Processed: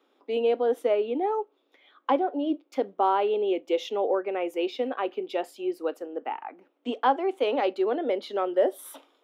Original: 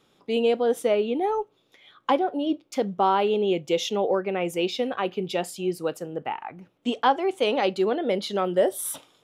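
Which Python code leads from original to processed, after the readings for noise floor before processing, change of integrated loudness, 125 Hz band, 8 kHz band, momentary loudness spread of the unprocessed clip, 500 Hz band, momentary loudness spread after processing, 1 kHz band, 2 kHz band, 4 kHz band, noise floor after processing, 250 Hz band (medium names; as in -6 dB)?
-66 dBFS, -2.0 dB, under -20 dB, under -10 dB, 9 LU, -1.5 dB, 11 LU, -2.0 dB, -4.5 dB, -7.5 dB, -70 dBFS, -3.5 dB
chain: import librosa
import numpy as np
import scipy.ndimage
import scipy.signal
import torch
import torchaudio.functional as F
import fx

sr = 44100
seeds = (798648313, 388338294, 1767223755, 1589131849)

y = scipy.signal.sosfilt(scipy.signal.ellip(4, 1.0, 50, 260.0, 'highpass', fs=sr, output='sos'), x)
y = fx.peak_eq(y, sr, hz=8300.0, db=-13.5, octaves=2.0)
y = y * 10.0 ** (-1.0 / 20.0)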